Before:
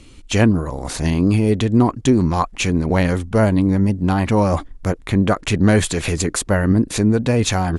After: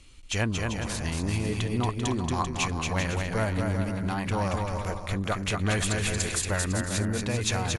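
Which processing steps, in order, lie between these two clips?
bell 270 Hz -10.5 dB 2.7 oct; bouncing-ball echo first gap 0.23 s, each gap 0.7×, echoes 5; gain -6.5 dB

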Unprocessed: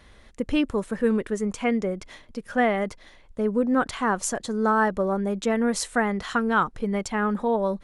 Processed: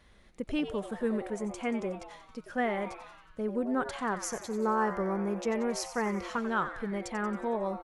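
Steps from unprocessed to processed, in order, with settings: 4.15–6.38 ripple EQ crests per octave 0.81, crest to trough 8 dB; frequency-shifting echo 91 ms, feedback 59%, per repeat +150 Hz, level -12 dB; gain -8.5 dB

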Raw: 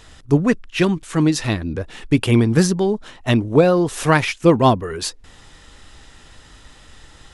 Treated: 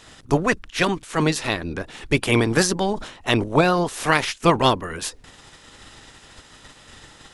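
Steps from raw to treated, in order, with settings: spectral limiter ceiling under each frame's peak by 16 dB; 2.93–3.44 sustainer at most 92 dB/s; gain -3.5 dB

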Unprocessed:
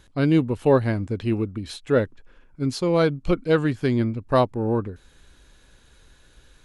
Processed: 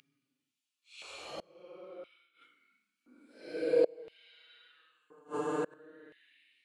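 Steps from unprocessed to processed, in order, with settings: Paulstretch 12×, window 0.05 s, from 3.16; flipped gate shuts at -17 dBFS, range -30 dB; LFO high-pass square 0.49 Hz 520–2800 Hz; gain -1.5 dB

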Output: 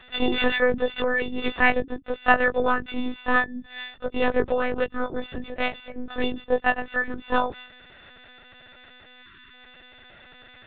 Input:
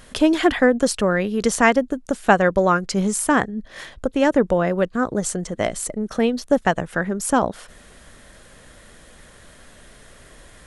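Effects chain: frequency quantiser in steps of 4 st; monotone LPC vocoder at 8 kHz 250 Hz; spectral delete 9.22–9.54, 410–940 Hz; gain -5.5 dB

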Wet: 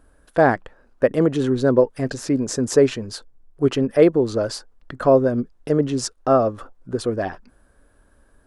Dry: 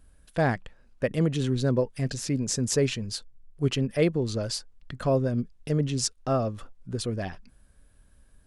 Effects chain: band shelf 660 Hz +10.5 dB 3 oct

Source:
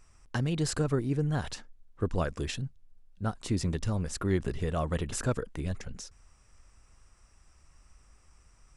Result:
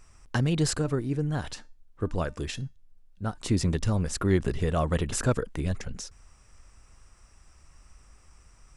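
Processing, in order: 0.76–3.38 resonator 300 Hz, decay 0.32 s, harmonics all, mix 40%; gain +4.5 dB

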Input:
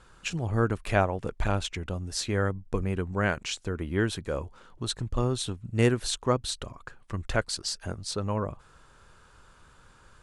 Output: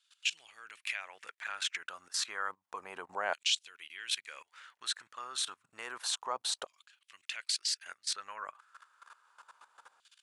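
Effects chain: level quantiser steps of 18 dB; LFO high-pass saw down 0.3 Hz 730–3400 Hz; gain +3 dB

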